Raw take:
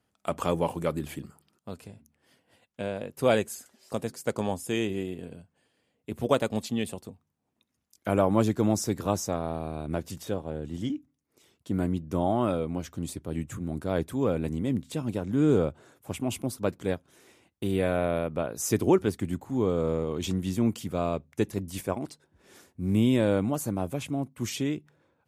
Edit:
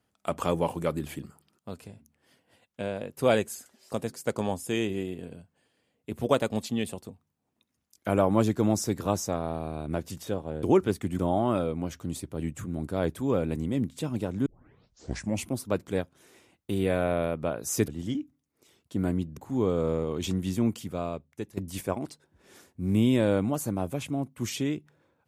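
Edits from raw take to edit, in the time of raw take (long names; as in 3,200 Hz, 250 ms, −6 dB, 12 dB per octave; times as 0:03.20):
0:10.63–0:12.12: swap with 0:18.81–0:19.37
0:15.39: tape start 1.02 s
0:20.55–0:21.57: fade out, to −13 dB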